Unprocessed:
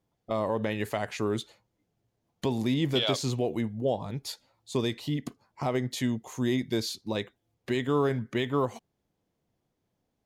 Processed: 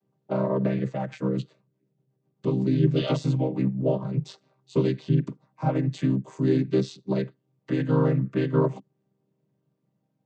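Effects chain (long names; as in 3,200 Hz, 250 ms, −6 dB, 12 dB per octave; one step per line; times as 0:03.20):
channel vocoder with a chord as carrier minor triad, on C3
0:00.79–0:03.02: rotating-speaker cabinet horn 8 Hz
level +6 dB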